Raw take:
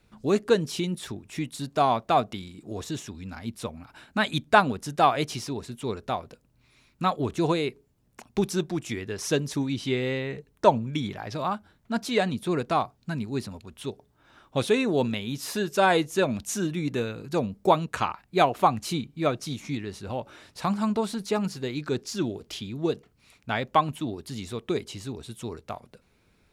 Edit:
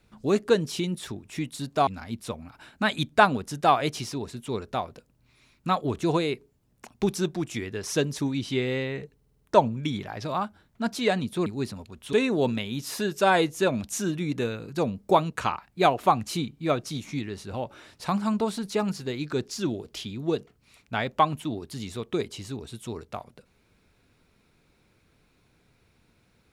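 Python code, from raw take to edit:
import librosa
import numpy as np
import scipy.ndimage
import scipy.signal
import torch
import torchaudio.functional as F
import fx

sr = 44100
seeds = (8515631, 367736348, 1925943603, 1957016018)

y = fx.edit(x, sr, fx.cut(start_s=1.87, length_s=1.35),
    fx.stutter(start_s=10.51, slice_s=0.05, count=6),
    fx.cut(start_s=12.56, length_s=0.65),
    fx.cut(start_s=13.88, length_s=0.81), tone=tone)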